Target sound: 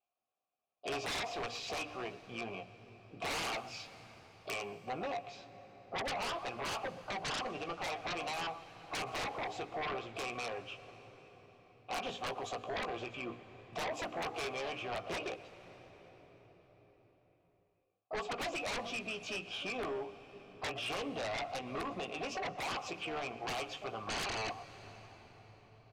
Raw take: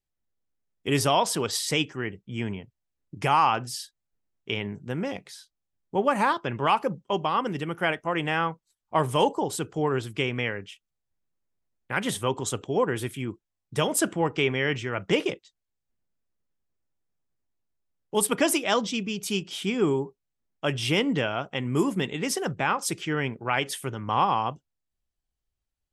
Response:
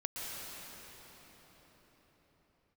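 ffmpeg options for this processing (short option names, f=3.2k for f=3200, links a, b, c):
-filter_complex "[0:a]aresample=16000,aeval=exprs='(mod(4.47*val(0)+1,2)-1)/4.47':c=same,aresample=44100,equalizer=f=1.5k:w=6.1:g=-3.5,asplit=3[a][b][c];[b]asetrate=22050,aresample=44100,atempo=2,volume=-16dB[d];[c]asetrate=66075,aresample=44100,atempo=0.66742,volume=-17dB[e];[a][d][e]amix=inputs=3:normalize=0,bandreject=f=60:t=h:w=6,bandreject=f=120:t=h:w=6,bandreject=f=180:t=h:w=6,bandreject=f=240:t=h:w=6,bandreject=f=300:t=h:w=6,asplit=2[f][g];[g]adelay=17,volume=-7dB[h];[f][h]amix=inputs=2:normalize=0,acompressor=threshold=-28dB:ratio=2.5,asplit=3[i][j][k];[i]bandpass=f=730:t=q:w=8,volume=0dB[l];[j]bandpass=f=1.09k:t=q:w=8,volume=-6dB[m];[k]bandpass=f=2.44k:t=q:w=8,volume=-9dB[n];[l][m][n]amix=inputs=3:normalize=0,asplit=2[o][p];[p]adelay=120,highpass=300,lowpass=3.4k,asoftclip=type=hard:threshold=-33.5dB,volume=-21dB[q];[o][q]amix=inputs=2:normalize=0,aeval=exprs='0.0562*sin(PI/2*6.31*val(0)/0.0562)':c=same,asplit=2[r][s];[s]equalizer=f=110:w=2.1:g=14[t];[1:a]atrim=start_sample=2205[u];[t][u]afir=irnorm=-1:irlink=0,volume=-17dB[v];[r][v]amix=inputs=2:normalize=0,alimiter=level_in=2.5dB:limit=-24dB:level=0:latency=1:release=382,volume=-2.5dB,volume=-6.5dB"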